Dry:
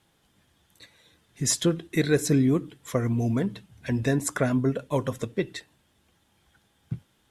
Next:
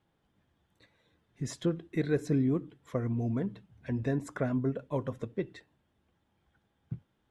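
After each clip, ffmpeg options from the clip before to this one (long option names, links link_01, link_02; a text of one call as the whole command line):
ffmpeg -i in.wav -af "lowpass=frequency=1300:poles=1,volume=-6dB" out.wav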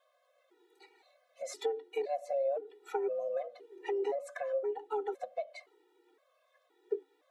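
ffmpeg -i in.wav -filter_complex "[0:a]afreqshift=280,acrossover=split=370[link_01][link_02];[link_02]acompressor=threshold=-41dB:ratio=10[link_03];[link_01][link_03]amix=inputs=2:normalize=0,afftfilt=real='re*gt(sin(2*PI*0.97*pts/sr)*(1-2*mod(floor(b*sr/1024/250),2)),0)':imag='im*gt(sin(2*PI*0.97*pts/sr)*(1-2*mod(floor(b*sr/1024/250),2)),0)':win_size=1024:overlap=0.75,volume=7dB" out.wav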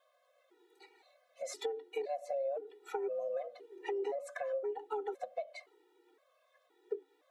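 ffmpeg -i in.wav -af "acompressor=threshold=-34dB:ratio=3" out.wav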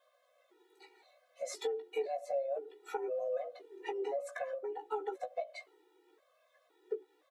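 ffmpeg -i in.wav -filter_complex "[0:a]asplit=2[link_01][link_02];[link_02]adelay=16,volume=-5.5dB[link_03];[link_01][link_03]amix=inputs=2:normalize=0" out.wav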